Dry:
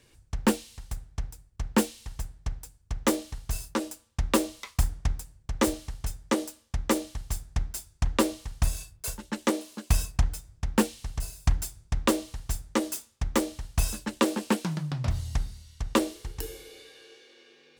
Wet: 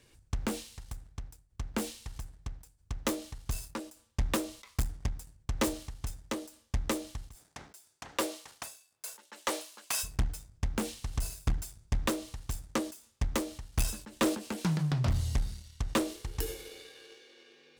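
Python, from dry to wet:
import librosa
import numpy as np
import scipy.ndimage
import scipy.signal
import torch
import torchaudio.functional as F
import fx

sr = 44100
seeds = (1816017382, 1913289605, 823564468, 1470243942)

y = fx.leveller(x, sr, passes=1)
y = fx.highpass(y, sr, hz=fx.line((7.34, 300.0), (10.03, 850.0)), slope=12, at=(7.34, 10.03), fade=0.02)
y = 10.0 ** (-22.0 / 20.0) * np.tanh(y / 10.0 ** (-22.0 / 20.0))
y = fx.end_taper(y, sr, db_per_s=120.0)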